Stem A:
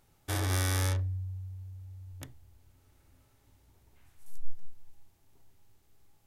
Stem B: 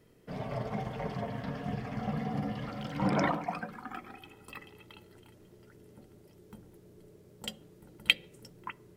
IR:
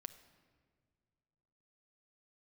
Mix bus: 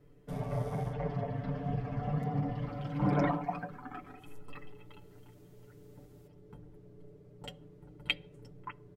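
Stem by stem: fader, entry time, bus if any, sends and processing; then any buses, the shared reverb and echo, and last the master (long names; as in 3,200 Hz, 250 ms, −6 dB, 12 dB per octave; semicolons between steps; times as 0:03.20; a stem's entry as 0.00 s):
0:02.49 −20.5 dB → 0:02.83 −12 dB → 0:04.79 −12 dB → 0:05.18 −3.5 dB, 0.00 s, send −3.5 dB, parametric band 92 Hz +11 dB; brickwall limiter −26 dBFS, peak gain reduction 13 dB
−3.0 dB, 0.00 s, no send, spectral tilt −4.5 dB per octave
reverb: on, pre-delay 6 ms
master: low-shelf EQ 400 Hz −11.5 dB; comb filter 6.9 ms, depth 83%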